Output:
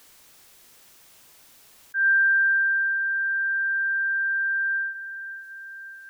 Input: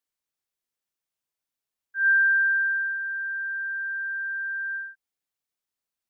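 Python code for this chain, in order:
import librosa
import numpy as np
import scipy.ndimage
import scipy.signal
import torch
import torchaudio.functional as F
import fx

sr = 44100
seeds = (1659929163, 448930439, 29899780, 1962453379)

y = fx.echo_feedback(x, sr, ms=561, feedback_pct=37, wet_db=-20)
y = fx.env_flatten(y, sr, amount_pct=50)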